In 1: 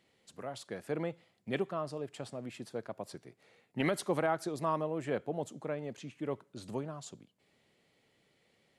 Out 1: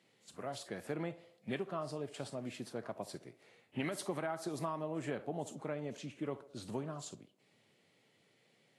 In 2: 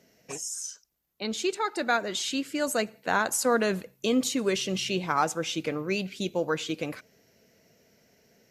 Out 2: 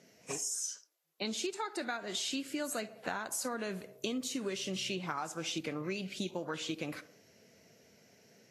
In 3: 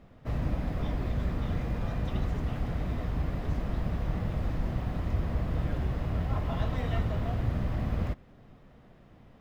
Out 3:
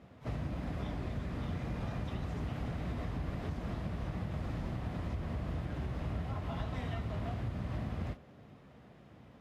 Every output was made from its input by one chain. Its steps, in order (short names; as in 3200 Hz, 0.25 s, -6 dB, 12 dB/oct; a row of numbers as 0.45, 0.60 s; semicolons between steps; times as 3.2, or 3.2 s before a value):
HPF 69 Hz 12 dB/oct; narrowing echo 68 ms, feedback 54%, band-pass 580 Hz, level -16 dB; dynamic EQ 490 Hz, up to -6 dB, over -49 dBFS, Q 6.7; compressor 16:1, threshold -33 dBFS; Vorbis 32 kbps 32000 Hz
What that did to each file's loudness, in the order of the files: -4.5, -8.5, -6.5 LU